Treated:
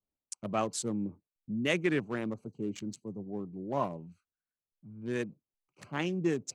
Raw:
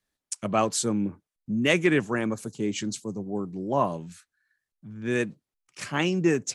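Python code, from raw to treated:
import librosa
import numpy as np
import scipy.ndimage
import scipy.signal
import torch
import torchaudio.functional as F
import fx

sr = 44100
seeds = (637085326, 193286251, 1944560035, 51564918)

y = fx.wiener(x, sr, points=25)
y = y * 10.0 ** (-7.0 / 20.0)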